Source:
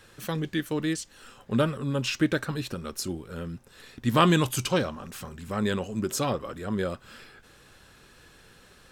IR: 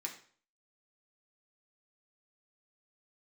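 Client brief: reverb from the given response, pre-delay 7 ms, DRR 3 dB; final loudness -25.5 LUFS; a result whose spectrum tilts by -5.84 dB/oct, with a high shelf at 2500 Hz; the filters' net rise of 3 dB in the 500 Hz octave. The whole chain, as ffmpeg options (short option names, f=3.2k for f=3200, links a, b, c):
-filter_complex "[0:a]equalizer=f=500:t=o:g=4,highshelf=f=2.5k:g=-6.5,asplit=2[a][b];[1:a]atrim=start_sample=2205,adelay=7[c];[b][c]afir=irnorm=-1:irlink=0,volume=-2.5dB[d];[a][d]amix=inputs=2:normalize=0,volume=0.5dB"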